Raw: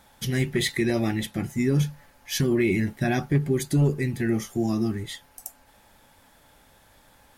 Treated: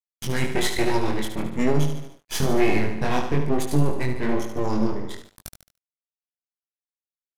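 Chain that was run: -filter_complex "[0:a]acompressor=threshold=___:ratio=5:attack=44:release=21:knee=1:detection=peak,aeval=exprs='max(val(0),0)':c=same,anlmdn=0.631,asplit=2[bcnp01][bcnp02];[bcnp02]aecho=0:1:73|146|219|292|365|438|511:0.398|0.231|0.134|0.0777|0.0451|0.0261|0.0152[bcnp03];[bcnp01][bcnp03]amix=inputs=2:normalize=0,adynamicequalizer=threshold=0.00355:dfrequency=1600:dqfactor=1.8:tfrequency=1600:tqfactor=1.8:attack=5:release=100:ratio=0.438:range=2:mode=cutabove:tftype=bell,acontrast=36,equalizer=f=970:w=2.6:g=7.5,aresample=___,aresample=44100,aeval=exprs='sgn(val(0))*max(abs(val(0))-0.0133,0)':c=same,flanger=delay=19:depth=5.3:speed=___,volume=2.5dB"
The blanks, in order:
-23dB, 32000, 1.1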